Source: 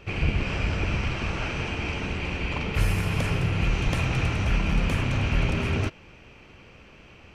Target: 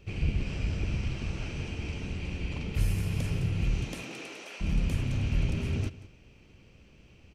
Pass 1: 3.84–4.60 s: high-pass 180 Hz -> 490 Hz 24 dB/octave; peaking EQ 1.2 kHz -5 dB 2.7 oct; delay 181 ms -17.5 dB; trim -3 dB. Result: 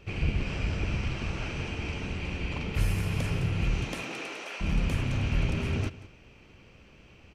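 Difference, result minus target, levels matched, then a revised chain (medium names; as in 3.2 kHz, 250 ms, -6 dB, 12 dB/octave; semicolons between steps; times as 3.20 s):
1 kHz band +6.0 dB
3.84–4.60 s: high-pass 180 Hz -> 490 Hz 24 dB/octave; peaking EQ 1.2 kHz -13 dB 2.7 oct; delay 181 ms -17.5 dB; trim -3 dB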